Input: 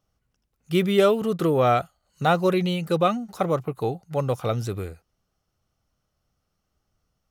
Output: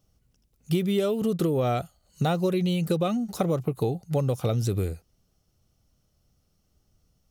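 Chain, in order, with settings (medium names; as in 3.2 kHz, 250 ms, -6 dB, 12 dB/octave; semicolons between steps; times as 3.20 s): peaking EQ 1.3 kHz -10.5 dB 2.3 oct; compression 12:1, threshold -29 dBFS, peak gain reduction 13 dB; trim +8 dB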